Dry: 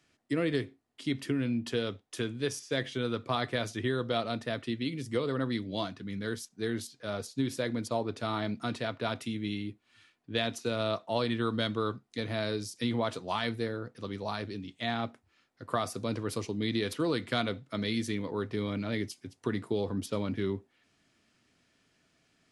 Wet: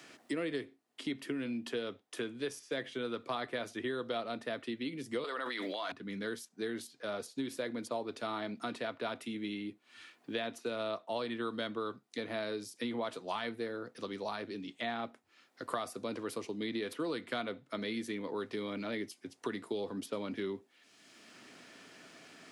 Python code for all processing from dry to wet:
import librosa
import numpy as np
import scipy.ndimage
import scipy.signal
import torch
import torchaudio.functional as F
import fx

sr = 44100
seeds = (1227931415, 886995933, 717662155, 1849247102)

y = fx.chain(x, sr, fx.gate_hold(open_db=-27.0, close_db=-38.0, hold_ms=71.0, range_db=-21, attack_ms=1.4, release_ms=100.0),
    fx.highpass(hz=800.0, slope=12),
    fx.env_flatten(amount_pct=100), at=(5.24, 5.92))
y = scipy.signal.sosfilt(scipy.signal.butter(2, 250.0, 'highpass', fs=sr, output='sos'), y)
y = fx.dynamic_eq(y, sr, hz=5700.0, q=0.96, threshold_db=-51.0, ratio=4.0, max_db=-5)
y = fx.band_squash(y, sr, depth_pct=70)
y = y * librosa.db_to_amplitude(-4.0)